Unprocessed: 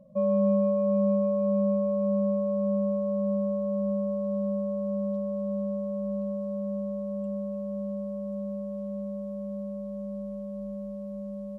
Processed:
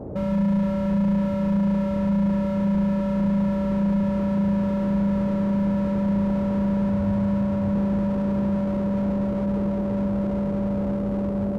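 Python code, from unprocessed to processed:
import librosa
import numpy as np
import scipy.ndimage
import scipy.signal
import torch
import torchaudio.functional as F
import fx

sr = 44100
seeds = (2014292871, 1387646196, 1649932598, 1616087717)

p1 = fx.dmg_noise_band(x, sr, seeds[0], low_hz=45.0, high_hz=620.0, level_db=-43.0)
p2 = fx.low_shelf(p1, sr, hz=310.0, db=6.0)
p3 = fx.rider(p2, sr, range_db=3, speed_s=0.5)
p4 = p2 + F.gain(torch.from_numpy(p3), 1.0).numpy()
p5 = fx.graphic_eq_15(p4, sr, hz=(100, 400, 1000), db=(9, -10, 7), at=(6.89, 7.76))
y = fx.slew_limit(p5, sr, full_power_hz=24.0)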